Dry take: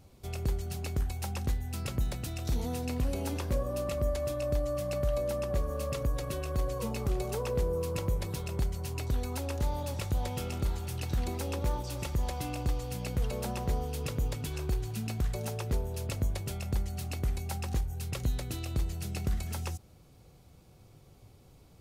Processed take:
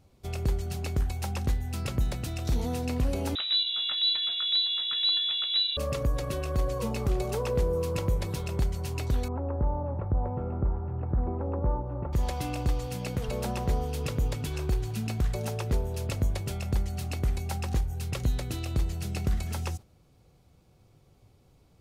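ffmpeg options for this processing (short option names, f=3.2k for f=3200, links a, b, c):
-filter_complex "[0:a]asettb=1/sr,asplit=3[a][b][c];[a]atrim=end=3.354[d];[b]atrim=start=3.35:end=5.77,asetpts=PTS-STARTPTS,afade=t=in:d=0.004:c=qsin,afade=t=out:st=2.416:d=0.004:c=qsin,lowpass=f=3.4k:t=q:w=0.5098,lowpass=f=3.4k:t=q:w=0.6013,lowpass=f=3.4k:t=q:w=0.9,lowpass=f=3.4k:t=q:w=2.563,afreqshift=-4000[e];[c]atrim=start=5.766[f];[d][e]acrossfade=d=0.004:c1=hsin:c2=qsin[g];[g][f]acrossfade=d=0.004:c1=qsin:c2=hsin,asettb=1/sr,asplit=3[h][i][j];[h]atrim=end=9.284[k];[i]atrim=start=9.28:end=12.13,asetpts=PTS-STARTPTS,afade=t=in:d=0.004:c=qsin,afade=t=out:st=2.846:d=0.004:c=qsin,lowpass=f=1.2k:w=0.5412,lowpass=f=1.2k:w=1.3066[l];[j]atrim=start=12.126[m];[k][l]acrossfade=d=0.004:c1=hsin:c2=qsin[n];[n][m]acrossfade=d=0.004:c1=qsin:c2=hsin,asettb=1/sr,asplit=3[o][p][q];[o]atrim=end=12.874[r];[p]atrim=start=12.87:end=13.28,asetpts=PTS-STARTPTS,afade=t=in:d=0.004:c=qsin,afade=t=out:st=0.406:d=0.004:c=qsin,highpass=91[s];[q]atrim=start=13.276[t];[r][s]acrossfade=d=0.004:c1=hsin:c2=qsin[u];[u][t]acrossfade=d=0.004:c1=qsin:c2=hsin,agate=range=-7dB:threshold=-44dB:ratio=16:detection=peak,highshelf=f=8.1k:g=-5.5,volume=3.5dB"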